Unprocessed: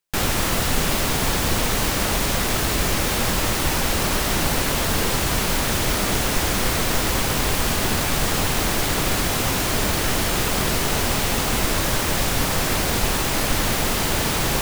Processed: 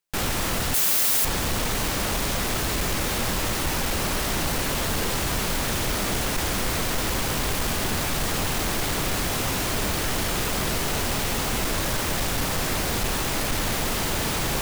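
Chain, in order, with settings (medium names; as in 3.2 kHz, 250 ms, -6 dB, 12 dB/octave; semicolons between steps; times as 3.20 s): 0.74–1.25 s: RIAA curve recording; saturation -16.5 dBFS, distortion -11 dB; trim -2 dB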